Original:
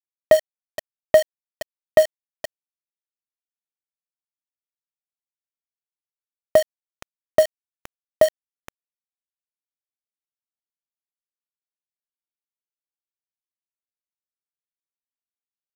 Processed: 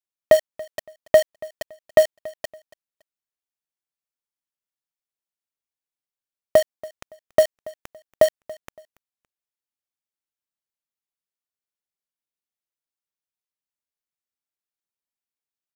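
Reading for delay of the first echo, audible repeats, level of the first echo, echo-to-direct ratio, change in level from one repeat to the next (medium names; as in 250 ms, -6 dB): 282 ms, 2, -21.0 dB, -20.5 dB, -11.0 dB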